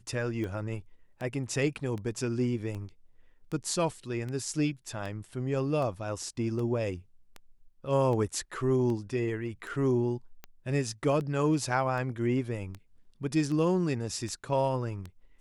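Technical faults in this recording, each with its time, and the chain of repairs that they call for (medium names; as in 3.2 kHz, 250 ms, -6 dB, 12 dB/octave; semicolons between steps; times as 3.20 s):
tick 78 rpm -26 dBFS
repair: de-click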